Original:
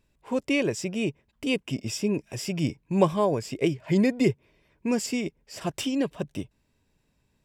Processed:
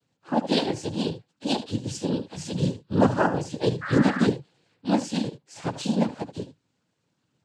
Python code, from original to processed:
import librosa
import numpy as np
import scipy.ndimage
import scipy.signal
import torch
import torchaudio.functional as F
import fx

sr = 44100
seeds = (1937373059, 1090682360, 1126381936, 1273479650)

p1 = fx.partial_stretch(x, sr, pct=112)
p2 = p1 + fx.echo_single(p1, sr, ms=75, db=-13.0, dry=0)
p3 = fx.noise_vocoder(p2, sr, seeds[0], bands=8)
p4 = fx.dmg_noise_band(p3, sr, seeds[1], low_hz=1100.0, high_hz=1900.0, level_db=-37.0, at=(3.81, 4.25), fade=0.02)
y = p4 * 10.0 ** (4.0 / 20.0)